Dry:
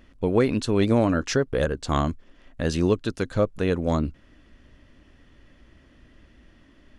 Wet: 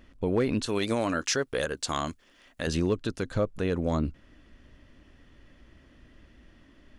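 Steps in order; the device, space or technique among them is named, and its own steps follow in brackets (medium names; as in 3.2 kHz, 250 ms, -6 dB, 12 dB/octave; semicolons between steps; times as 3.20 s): 0.66–2.67 s: tilt EQ +3 dB/octave; clipper into limiter (hard clipper -11.5 dBFS, distortion -28 dB; peak limiter -15.5 dBFS, peak gain reduction 4 dB); trim -1.5 dB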